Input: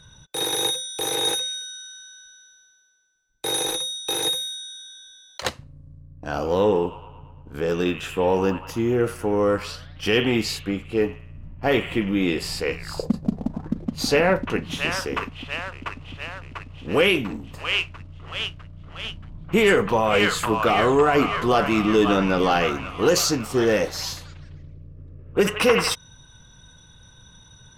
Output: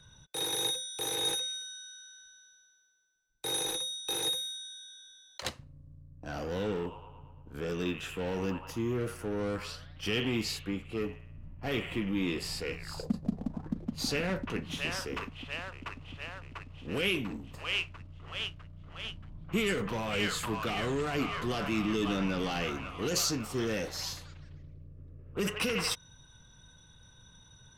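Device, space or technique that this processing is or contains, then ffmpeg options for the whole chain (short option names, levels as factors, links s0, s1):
one-band saturation: -filter_complex "[0:a]acrossover=split=280|2200[s0][s1][s2];[s1]asoftclip=type=tanh:threshold=0.0398[s3];[s0][s3][s2]amix=inputs=3:normalize=0,volume=0.422"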